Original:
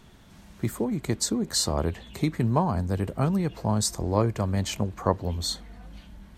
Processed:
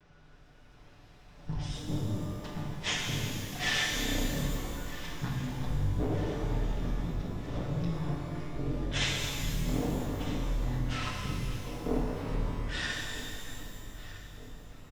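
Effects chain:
lower of the sound and its delayed copy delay 2.9 ms
on a send: repeating echo 537 ms, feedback 56%, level −17 dB
on the sum: wrong playback speed 78 rpm record played at 33 rpm
reverb with rising layers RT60 2.5 s, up +12 semitones, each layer −8 dB, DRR −1 dB
level −6 dB

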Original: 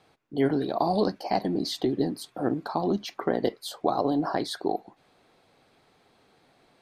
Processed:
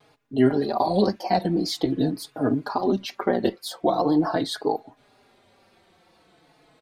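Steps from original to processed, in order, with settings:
tape wow and flutter 110 cents
barber-pole flanger 4.3 ms −0.43 Hz
level +6.5 dB

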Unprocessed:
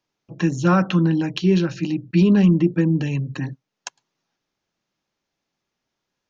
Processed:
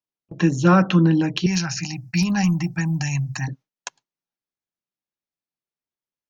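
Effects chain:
noise gate with hold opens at −30 dBFS
0:01.46–0:03.48: drawn EQ curve 130 Hz 0 dB, 480 Hz −25 dB, 750 Hz +8 dB, 1,100 Hz −1 dB, 2,300 Hz +5 dB, 3,400 Hz −8 dB, 5,100 Hz +14 dB
level +2 dB

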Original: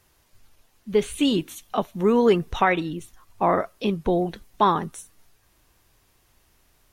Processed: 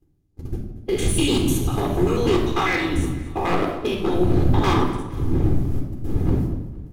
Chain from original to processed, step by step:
spectrum averaged block by block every 100 ms
wind on the microphone 120 Hz −30 dBFS
noise gate −33 dBFS, range −28 dB
high-shelf EQ 2,700 Hz +9.5 dB
harmonic and percussive parts rebalanced harmonic −18 dB
parametric band 320 Hz +9 dB 0.72 octaves
leveller curve on the samples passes 1
in parallel at +0.5 dB: brickwall limiter −19.5 dBFS, peak gain reduction 9 dB
on the sum: wave folding −13.5 dBFS
flanger 1.8 Hz, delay 8.3 ms, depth 4.7 ms, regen −66%
on a send: repeating echo 232 ms, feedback 47%, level −17 dB
on the sum: rectangular room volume 3,400 cubic metres, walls furnished, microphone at 3.9 metres

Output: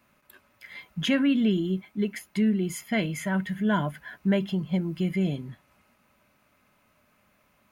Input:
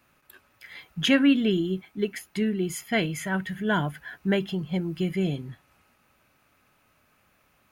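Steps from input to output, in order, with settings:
in parallel at +1 dB: brickwall limiter −21 dBFS, peak gain reduction 10 dB
on the sum: hollow resonant body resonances 210/600/1,000/2,100 Hz, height 7 dB
level −8.5 dB

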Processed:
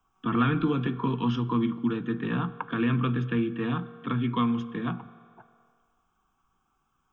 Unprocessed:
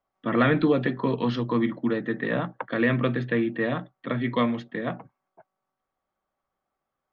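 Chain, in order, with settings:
low-shelf EQ 67 Hz +6.5 dB
phaser with its sweep stopped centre 2,900 Hz, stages 8
convolution reverb RT60 1.6 s, pre-delay 3 ms, DRR 14 dB
multiband upward and downward compressor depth 40%

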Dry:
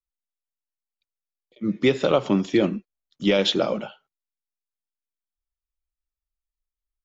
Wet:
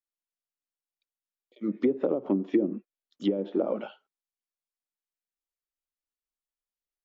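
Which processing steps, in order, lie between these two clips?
treble cut that deepens with the level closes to 350 Hz, closed at −15.5 dBFS
low shelf with overshoot 180 Hz −14 dB, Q 1.5
level −4.5 dB

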